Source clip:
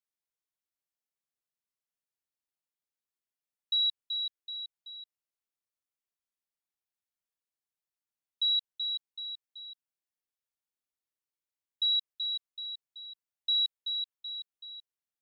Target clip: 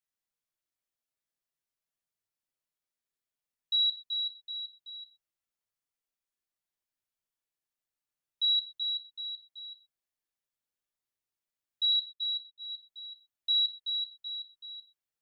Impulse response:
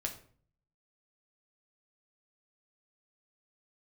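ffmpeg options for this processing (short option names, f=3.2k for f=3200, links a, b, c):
-filter_complex "[0:a]asettb=1/sr,asplit=3[a][b][c];[a]atrim=end=11.924[d];[b]atrim=start=11.92:end=12.7,asetpts=PTS-STARTPTS,afade=t=in:d=0.004:c=qsin,afade=t=out:st=0.776:d=0.004:c=qsin,agate=range=-18dB:threshold=-39dB:ratio=16:detection=peak[e];[c]atrim=start=12.696[f];[d][e]acrossfade=d=0.004:c1=hsin:c2=qsin[g];[g][f]acrossfade=d=0.004:c1=qsin:c2=hsin[h];[1:a]atrim=start_sample=2205,atrim=end_sample=6174[i];[h][i]afir=irnorm=-1:irlink=0"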